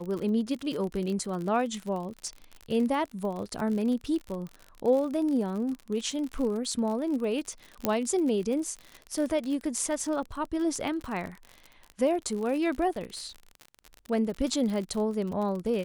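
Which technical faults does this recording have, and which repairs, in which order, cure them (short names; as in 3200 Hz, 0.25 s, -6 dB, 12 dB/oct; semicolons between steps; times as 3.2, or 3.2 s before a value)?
crackle 51/s -33 dBFS
7.85 pop -10 dBFS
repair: de-click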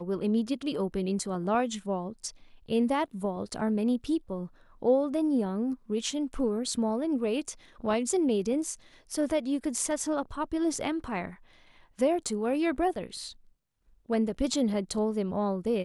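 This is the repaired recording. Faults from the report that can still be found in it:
none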